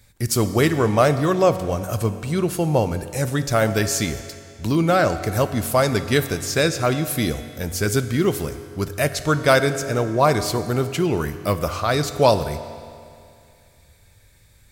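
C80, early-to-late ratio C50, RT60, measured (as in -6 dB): 12.0 dB, 11.0 dB, 2.4 s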